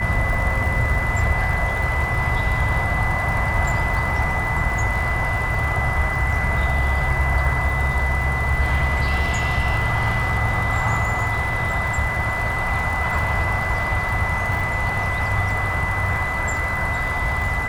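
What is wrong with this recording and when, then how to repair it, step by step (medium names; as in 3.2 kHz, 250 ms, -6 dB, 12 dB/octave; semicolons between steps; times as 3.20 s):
crackle 60 per s -28 dBFS
whine 2 kHz -24 dBFS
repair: de-click; band-stop 2 kHz, Q 30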